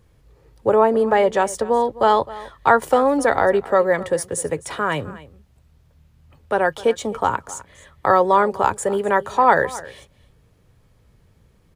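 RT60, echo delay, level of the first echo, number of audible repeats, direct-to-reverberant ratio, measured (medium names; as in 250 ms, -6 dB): no reverb, 259 ms, -18.5 dB, 1, no reverb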